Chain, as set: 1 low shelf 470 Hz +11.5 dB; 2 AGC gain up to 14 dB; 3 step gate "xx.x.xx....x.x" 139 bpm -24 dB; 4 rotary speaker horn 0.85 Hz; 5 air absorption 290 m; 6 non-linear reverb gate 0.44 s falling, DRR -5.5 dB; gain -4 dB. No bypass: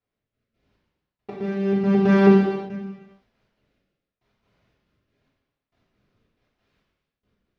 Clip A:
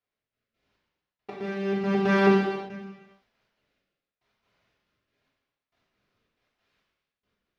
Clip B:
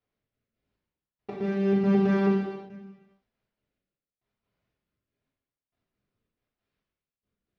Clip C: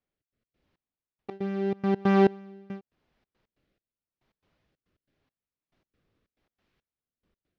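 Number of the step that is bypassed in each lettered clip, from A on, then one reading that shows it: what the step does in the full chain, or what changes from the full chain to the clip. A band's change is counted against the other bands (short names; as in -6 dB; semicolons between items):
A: 1, 125 Hz band -7.0 dB; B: 2, loudness change -6.0 LU; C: 6, momentary loudness spread change +3 LU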